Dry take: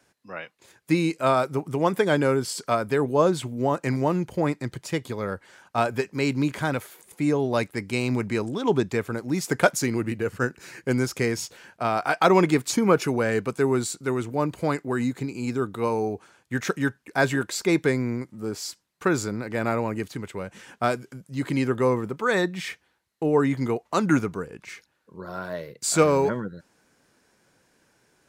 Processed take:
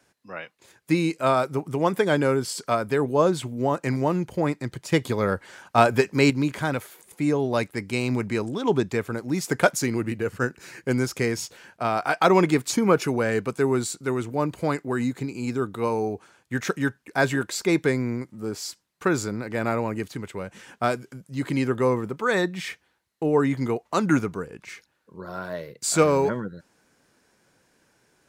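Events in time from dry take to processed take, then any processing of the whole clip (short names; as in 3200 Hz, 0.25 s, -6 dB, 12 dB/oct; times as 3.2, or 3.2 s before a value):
4.92–6.3 gain +6 dB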